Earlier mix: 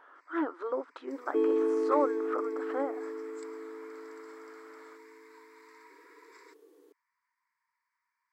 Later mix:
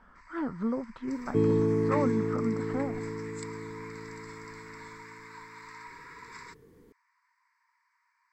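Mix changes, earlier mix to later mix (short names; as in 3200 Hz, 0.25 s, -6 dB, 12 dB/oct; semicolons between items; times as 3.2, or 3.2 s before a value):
speech -3.5 dB; first sound +10.5 dB; master: remove brick-wall FIR high-pass 280 Hz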